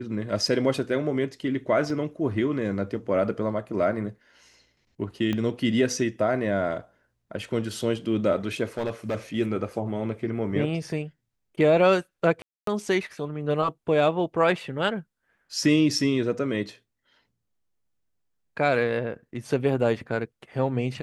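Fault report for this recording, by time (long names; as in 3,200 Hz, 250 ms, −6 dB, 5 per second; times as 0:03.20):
0:01.90: drop-out 2.4 ms
0:05.33: click −16 dBFS
0:08.77–0:09.16: clipping −23 dBFS
0:12.42–0:12.67: drop-out 253 ms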